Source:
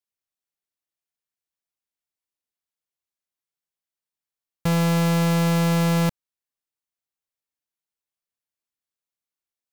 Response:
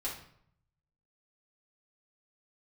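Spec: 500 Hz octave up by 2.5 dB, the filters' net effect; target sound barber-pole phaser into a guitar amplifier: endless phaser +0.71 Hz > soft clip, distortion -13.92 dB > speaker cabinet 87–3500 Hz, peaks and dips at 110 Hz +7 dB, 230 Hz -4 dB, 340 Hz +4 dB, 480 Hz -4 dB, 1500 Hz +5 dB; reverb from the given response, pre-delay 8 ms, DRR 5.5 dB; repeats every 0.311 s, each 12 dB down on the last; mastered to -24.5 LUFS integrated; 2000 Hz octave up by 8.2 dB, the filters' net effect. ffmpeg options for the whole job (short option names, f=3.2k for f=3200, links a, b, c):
-filter_complex "[0:a]equalizer=f=500:t=o:g=5,equalizer=f=2k:t=o:g=7.5,aecho=1:1:311|622|933:0.251|0.0628|0.0157,asplit=2[a][b];[1:a]atrim=start_sample=2205,adelay=8[c];[b][c]afir=irnorm=-1:irlink=0,volume=-7.5dB[d];[a][d]amix=inputs=2:normalize=0,asplit=2[e][f];[f]afreqshift=0.71[g];[e][g]amix=inputs=2:normalize=1,asoftclip=threshold=-17.5dB,highpass=87,equalizer=f=110:t=q:w=4:g=7,equalizer=f=230:t=q:w=4:g=-4,equalizer=f=340:t=q:w=4:g=4,equalizer=f=480:t=q:w=4:g=-4,equalizer=f=1.5k:t=q:w=4:g=5,lowpass=f=3.5k:w=0.5412,lowpass=f=3.5k:w=1.3066,volume=-0.5dB"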